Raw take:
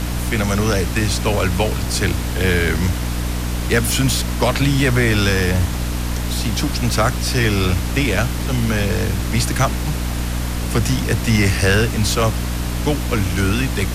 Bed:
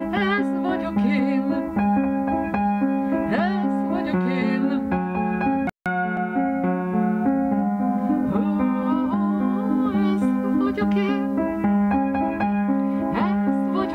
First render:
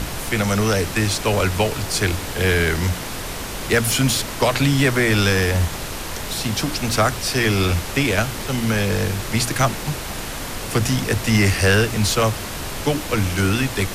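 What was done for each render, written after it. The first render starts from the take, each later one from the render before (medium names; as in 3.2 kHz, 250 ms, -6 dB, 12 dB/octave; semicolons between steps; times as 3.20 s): hum notches 60/120/180/240/300 Hz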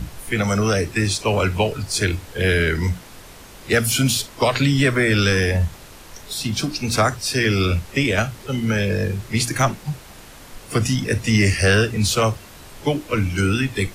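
noise print and reduce 13 dB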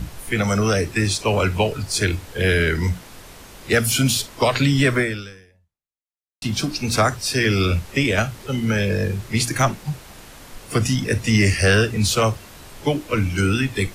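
4.99–6.42 s: fade out exponential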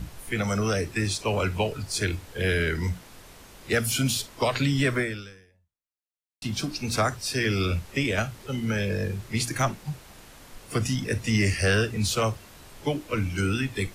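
trim -6.5 dB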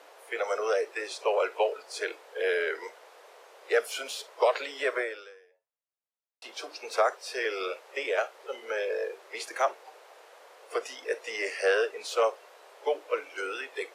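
steep high-pass 450 Hz 48 dB/octave; tilt EQ -4 dB/octave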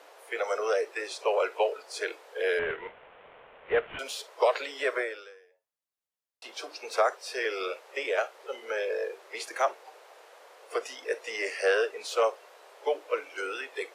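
2.59–3.99 s: CVSD coder 16 kbps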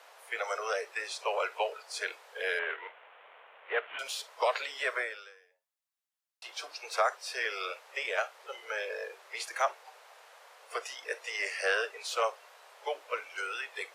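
high-pass 760 Hz 12 dB/octave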